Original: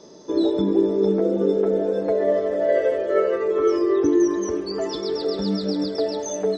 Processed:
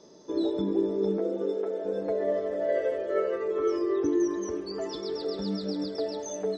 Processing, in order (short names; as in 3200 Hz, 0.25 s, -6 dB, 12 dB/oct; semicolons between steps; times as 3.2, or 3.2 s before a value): 1.17–1.84 HPF 220 Hz -> 520 Hz 12 dB/oct; gain -7.5 dB